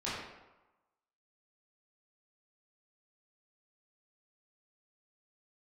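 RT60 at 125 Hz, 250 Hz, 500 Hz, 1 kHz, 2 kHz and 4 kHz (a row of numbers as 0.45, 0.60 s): 0.90, 0.95, 1.0, 1.1, 0.85, 0.65 s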